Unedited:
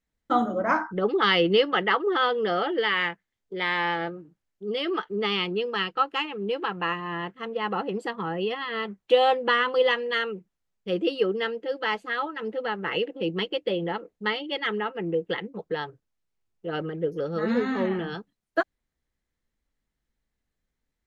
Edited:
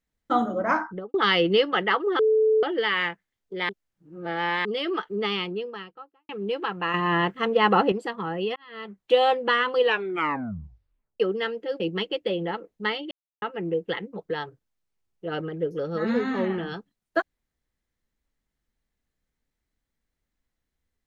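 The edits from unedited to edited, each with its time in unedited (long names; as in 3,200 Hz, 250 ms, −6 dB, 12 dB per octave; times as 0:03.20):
0:00.83–0:01.14: fade out and dull
0:02.19–0:02.63: beep over 436 Hz −16.5 dBFS
0:03.69–0:04.65: reverse
0:05.17–0:06.29: fade out and dull
0:06.94–0:07.92: clip gain +9 dB
0:08.56–0:09.14: fade in linear
0:09.78: tape stop 1.42 s
0:11.80–0:13.21: remove
0:14.52–0:14.83: silence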